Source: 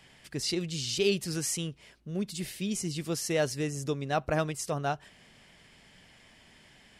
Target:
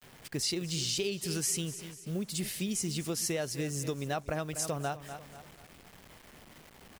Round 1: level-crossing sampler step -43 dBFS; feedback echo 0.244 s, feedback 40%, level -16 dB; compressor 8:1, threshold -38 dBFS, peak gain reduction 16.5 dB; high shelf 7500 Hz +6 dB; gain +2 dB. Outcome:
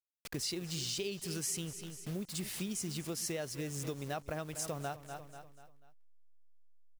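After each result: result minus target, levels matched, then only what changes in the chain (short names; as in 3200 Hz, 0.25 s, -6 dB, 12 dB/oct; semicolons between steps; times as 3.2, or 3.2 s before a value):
compressor: peak gain reduction +5 dB; level-crossing sampler: distortion +7 dB
change: compressor 8:1, threshold -32 dBFS, peak gain reduction 11 dB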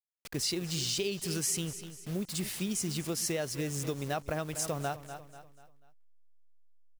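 level-crossing sampler: distortion +7 dB
change: level-crossing sampler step -50.5 dBFS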